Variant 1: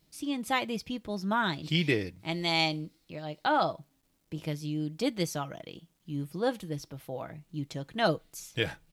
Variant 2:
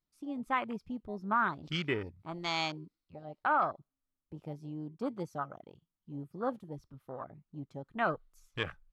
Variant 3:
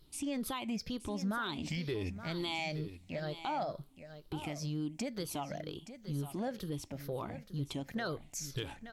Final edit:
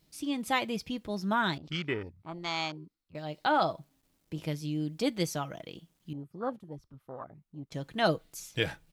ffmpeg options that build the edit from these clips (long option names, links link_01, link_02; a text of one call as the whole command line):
ffmpeg -i take0.wav -i take1.wav -filter_complex "[1:a]asplit=2[link_01][link_02];[0:a]asplit=3[link_03][link_04][link_05];[link_03]atrim=end=1.582[link_06];[link_01]atrim=start=1.578:end=3.152[link_07];[link_04]atrim=start=3.148:end=6.132[link_08];[link_02]atrim=start=6.128:end=7.722[link_09];[link_05]atrim=start=7.718[link_10];[link_06][link_07]acrossfade=duration=0.004:curve1=hsin:curve2=hsin[link_11];[link_11][link_08]acrossfade=duration=0.004:curve1=hsin:curve2=hsin[link_12];[link_12][link_09]acrossfade=duration=0.004:curve1=hsin:curve2=hsin[link_13];[link_13][link_10]acrossfade=duration=0.004:curve1=hsin:curve2=hsin" out.wav